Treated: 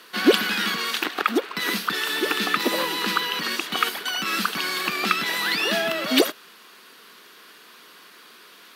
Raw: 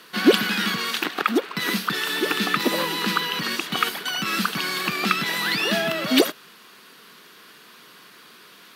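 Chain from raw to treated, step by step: HPF 250 Hz 12 dB/oct

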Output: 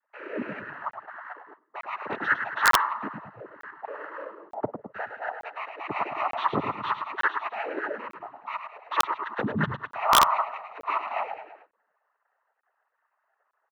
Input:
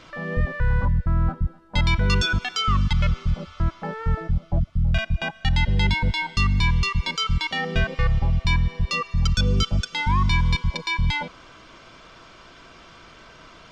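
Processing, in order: sine-wave speech; soft clip -8.5 dBFS, distortion -15 dB; frequency-shifting echo 0.105 s, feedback 48%, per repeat -57 Hz, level -7.5 dB; AGC gain up to 3.5 dB; gate -43 dBFS, range -18 dB; LPF 1400 Hz 24 dB/oct; noise vocoder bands 12; wrapped overs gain 4 dB; crackling interface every 0.90 s, samples 1024, zero, from 0.91; gain -5 dB

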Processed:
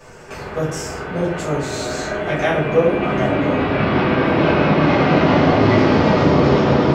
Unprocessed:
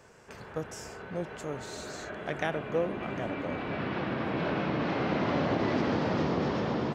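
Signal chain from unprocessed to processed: in parallel at +2.5 dB: limiter -22.5 dBFS, peak gain reduction 7 dB; on the sum: shoebox room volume 55 m³, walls mixed, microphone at 1.8 m; gain -1 dB

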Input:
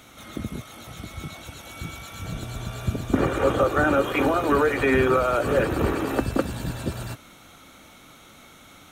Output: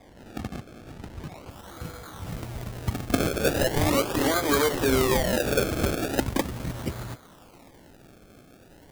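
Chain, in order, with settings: decimation with a swept rate 31×, swing 100% 0.39 Hz; high shelf 8200 Hz -5 dB, from 1.5 s +5 dB; gain -2.5 dB

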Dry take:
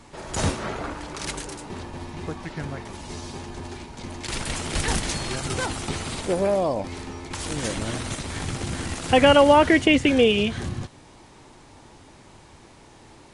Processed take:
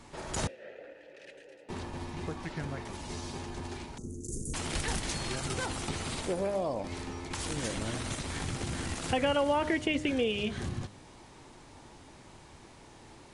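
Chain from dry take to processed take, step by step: 3.98–4.54 Chebyshev band-stop 440–6500 Hz, order 4; de-hum 101.5 Hz, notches 14; compressor 2:1, threshold -29 dBFS, peak gain reduction 10 dB; 0.47–1.69 vowel filter e; gain -3.5 dB

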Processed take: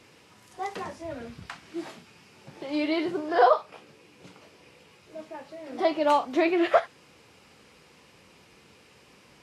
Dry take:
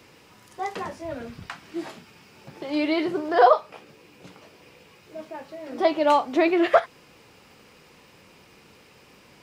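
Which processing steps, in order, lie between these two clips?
gain -3 dB; Vorbis 32 kbps 32000 Hz

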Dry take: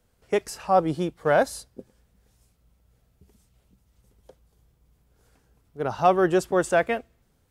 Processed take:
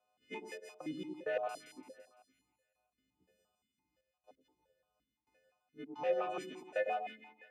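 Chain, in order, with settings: frequency quantiser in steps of 3 st; in parallel at -2.5 dB: compressor, threshold -32 dBFS, peak gain reduction 17.5 dB; on the sum: soft clip -13 dBFS, distortion -15 dB; step gate "xxxxx..xx..x." 131 bpm -60 dB; hard clip -15 dBFS, distortion -28 dB; split-band echo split 820 Hz, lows 0.101 s, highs 0.169 s, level -5 dB; vowel sequencer 5.8 Hz; gain -5 dB

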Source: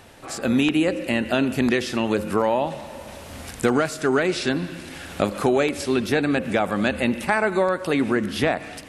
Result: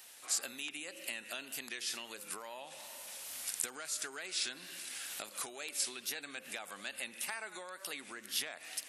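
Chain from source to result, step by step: wow and flutter 70 cents; compressor, threshold -25 dBFS, peak gain reduction 10.5 dB; differentiator; gain +2 dB

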